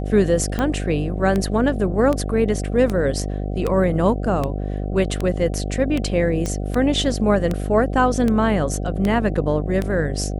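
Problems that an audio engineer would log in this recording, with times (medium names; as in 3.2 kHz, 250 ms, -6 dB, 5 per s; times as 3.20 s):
buzz 50 Hz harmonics 15 -25 dBFS
tick 78 rpm -10 dBFS
6.46 s: pop -12 dBFS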